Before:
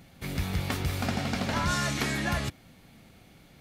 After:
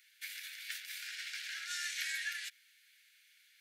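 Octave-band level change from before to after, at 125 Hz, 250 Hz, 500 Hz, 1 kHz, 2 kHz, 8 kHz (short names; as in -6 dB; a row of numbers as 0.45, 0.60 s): under -40 dB, under -40 dB, under -40 dB, -22.5 dB, -6.0 dB, -5.5 dB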